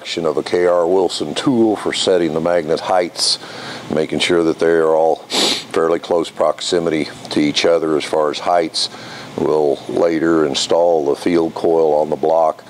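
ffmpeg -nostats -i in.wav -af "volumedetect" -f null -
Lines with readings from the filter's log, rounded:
mean_volume: -16.1 dB
max_volume: -3.2 dB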